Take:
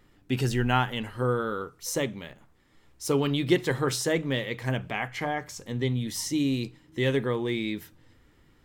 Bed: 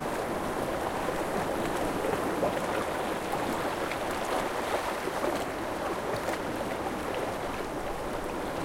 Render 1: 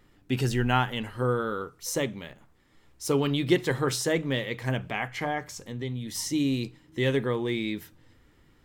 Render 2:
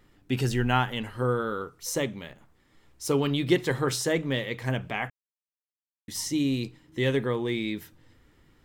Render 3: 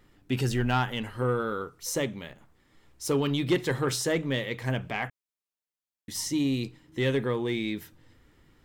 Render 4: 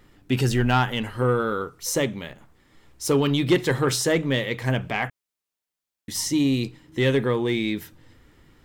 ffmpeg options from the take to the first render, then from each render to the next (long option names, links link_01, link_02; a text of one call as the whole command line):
ffmpeg -i in.wav -filter_complex "[0:a]asettb=1/sr,asplit=3[link_01][link_02][link_03];[link_01]atrim=end=5.594[link_04];[link_02]atrim=start=5.59:end=6.15,asetpts=PTS-STARTPTS,afade=type=in:duration=0.004:curve=qsin,afade=type=out:start_time=0.556:duration=0.004:curve=qsin,acompressor=threshold=-39dB:ratio=1.5:attack=3.2:release=140:knee=1:detection=peak[link_05];[link_03]atrim=start=6.146[link_06];[link_04][link_05]acrossfade=duration=0.004:curve1=hsin:curve2=qsin[link_07];[link_07][link_06]acrossfade=duration=0.004:curve1=qsin:curve2=hsin" out.wav
ffmpeg -i in.wav -filter_complex "[0:a]asplit=3[link_01][link_02][link_03];[link_01]atrim=end=5.1,asetpts=PTS-STARTPTS,afade=type=out:start_time=5.096:duration=0.004:curve=hsin[link_04];[link_02]atrim=start=5.1:end=6.08,asetpts=PTS-STARTPTS,volume=0[link_05];[link_03]atrim=start=6.08,asetpts=PTS-STARTPTS,afade=type=in:duration=0.004:curve=hsin[link_06];[link_04][link_05][link_06]concat=n=3:v=0:a=1" out.wav
ffmpeg -i in.wav -af "asoftclip=type=tanh:threshold=-16dB" out.wav
ffmpeg -i in.wav -af "volume=5.5dB" out.wav